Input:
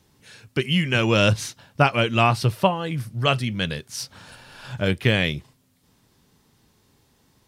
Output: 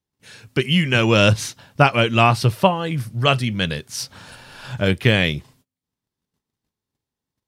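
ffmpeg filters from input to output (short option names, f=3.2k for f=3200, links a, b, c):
-af "agate=range=-28dB:threshold=-56dB:ratio=16:detection=peak,volume=3.5dB"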